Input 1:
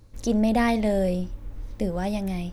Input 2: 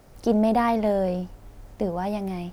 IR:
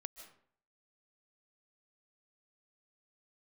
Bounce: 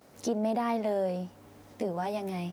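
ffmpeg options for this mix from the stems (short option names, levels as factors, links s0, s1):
-filter_complex "[0:a]volume=0.596[s0];[1:a]adelay=13,volume=0.794,asplit=2[s1][s2];[s2]apad=whole_len=111441[s3];[s0][s3]sidechaincompress=threshold=0.0355:ratio=8:attack=16:release=390[s4];[s4][s1]amix=inputs=2:normalize=0,highpass=190,alimiter=limit=0.0944:level=0:latency=1:release=444"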